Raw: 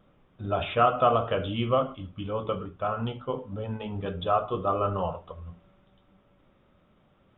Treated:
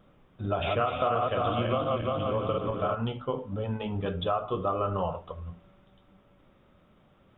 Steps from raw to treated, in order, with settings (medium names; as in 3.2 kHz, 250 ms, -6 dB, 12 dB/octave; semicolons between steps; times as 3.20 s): 0.46–2.95 s: backward echo that repeats 173 ms, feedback 64%, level -2 dB; compression 4:1, threshold -27 dBFS, peak gain reduction 11 dB; trim +2 dB